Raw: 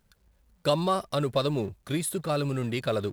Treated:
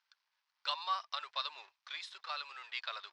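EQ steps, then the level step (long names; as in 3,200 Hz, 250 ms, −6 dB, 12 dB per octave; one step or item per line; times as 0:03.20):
elliptic band-pass filter 950–5,300 Hz, stop band 60 dB
high-frequency loss of the air 76 metres
high-shelf EQ 3,800 Hz +11.5 dB
−6.0 dB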